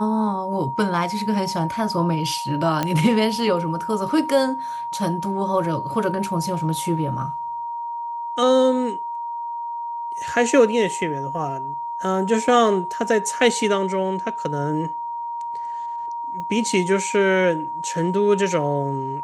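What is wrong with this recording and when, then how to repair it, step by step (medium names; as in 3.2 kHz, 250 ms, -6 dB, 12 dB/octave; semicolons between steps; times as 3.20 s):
whine 940 Hz -26 dBFS
2.83 s: pop -8 dBFS
16.40 s: pop -20 dBFS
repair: de-click; band-stop 940 Hz, Q 30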